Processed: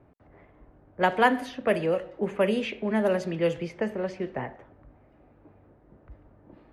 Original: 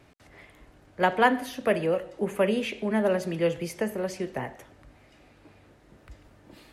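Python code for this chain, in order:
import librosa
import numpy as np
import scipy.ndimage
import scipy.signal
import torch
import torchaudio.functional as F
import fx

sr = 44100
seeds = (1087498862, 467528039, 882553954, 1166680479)

y = fx.env_lowpass(x, sr, base_hz=970.0, full_db=-19.0)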